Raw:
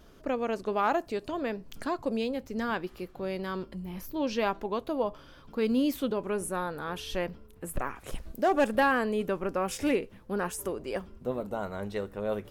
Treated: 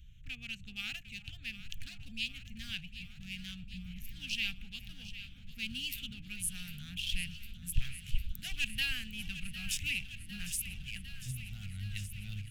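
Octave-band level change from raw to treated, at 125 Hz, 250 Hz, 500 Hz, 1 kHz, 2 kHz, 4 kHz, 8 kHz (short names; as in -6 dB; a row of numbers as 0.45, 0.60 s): -0.5 dB, -17.0 dB, under -40 dB, -34.0 dB, -4.0 dB, +5.5 dB, +2.0 dB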